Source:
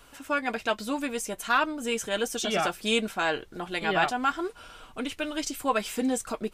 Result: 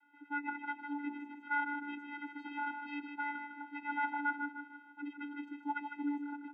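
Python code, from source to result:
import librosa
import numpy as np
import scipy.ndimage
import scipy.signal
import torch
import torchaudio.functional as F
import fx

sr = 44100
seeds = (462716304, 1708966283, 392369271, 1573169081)

y = scipy.signal.sosfilt(scipy.signal.cheby2(4, 50, 4800.0, 'lowpass', fs=sr, output='sos'), x)
y = np.diff(y, prepend=0.0)
y = fx.echo_feedback(y, sr, ms=154, feedback_pct=44, wet_db=-7)
y = fx.vocoder(y, sr, bands=16, carrier='square', carrier_hz=289.0)
y = F.gain(torch.from_numpy(y), 8.0).numpy()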